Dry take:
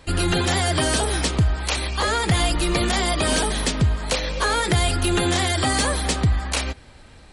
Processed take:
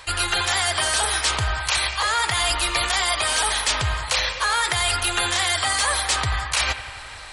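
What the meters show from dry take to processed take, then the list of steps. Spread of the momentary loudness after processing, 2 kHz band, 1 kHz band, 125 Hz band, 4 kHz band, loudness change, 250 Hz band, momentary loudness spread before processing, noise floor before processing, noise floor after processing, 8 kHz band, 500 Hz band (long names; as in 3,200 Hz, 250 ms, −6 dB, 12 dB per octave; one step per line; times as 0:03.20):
3 LU, +3.5 dB, +1.5 dB, −8.5 dB, +3.5 dB, +0.5 dB, −16.0 dB, 4 LU, −47 dBFS, −37 dBFS, +3.0 dB, −7.0 dB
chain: drawn EQ curve 120 Hz 0 dB, 190 Hz −14 dB, 1,000 Hz +14 dB
reversed playback
downward compressor 6 to 1, threshold −20 dBFS, peak gain reduction 14.5 dB
reversed playback
bucket-brigade delay 89 ms, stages 2,048, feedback 72%, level −13.5 dB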